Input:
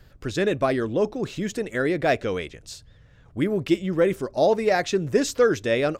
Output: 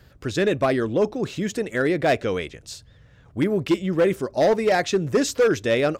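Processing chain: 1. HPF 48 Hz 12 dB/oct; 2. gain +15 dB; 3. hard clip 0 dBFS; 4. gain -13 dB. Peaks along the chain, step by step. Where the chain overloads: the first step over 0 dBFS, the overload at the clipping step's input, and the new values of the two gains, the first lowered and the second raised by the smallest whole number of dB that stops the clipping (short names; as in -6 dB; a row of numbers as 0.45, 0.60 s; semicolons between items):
-8.0, +7.0, 0.0, -13.0 dBFS; step 2, 7.0 dB; step 2 +8 dB, step 4 -6 dB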